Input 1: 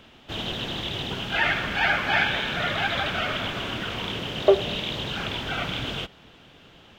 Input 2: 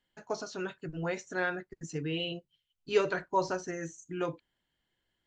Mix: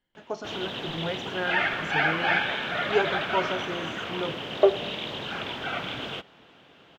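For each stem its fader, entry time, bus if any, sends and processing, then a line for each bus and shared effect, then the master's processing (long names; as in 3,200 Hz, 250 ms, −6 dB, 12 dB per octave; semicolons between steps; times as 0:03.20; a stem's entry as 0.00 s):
+0.5 dB, 0.15 s, no send, high-pass filter 330 Hz 6 dB per octave
+2.0 dB, 0.00 s, no send, no processing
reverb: not used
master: high-shelf EQ 3,400 Hz −10 dB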